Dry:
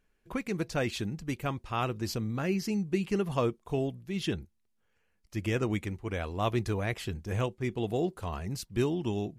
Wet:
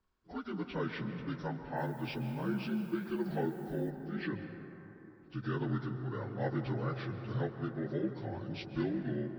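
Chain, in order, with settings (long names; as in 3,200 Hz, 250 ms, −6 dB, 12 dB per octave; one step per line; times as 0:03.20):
partials spread apart or drawn together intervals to 77%
0:01.76–0:03.89: background noise violet −61 dBFS
dense smooth reverb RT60 3.7 s, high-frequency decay 0.3×, pre-delay 120 ms, DRR 8 dB
level −4.5 dB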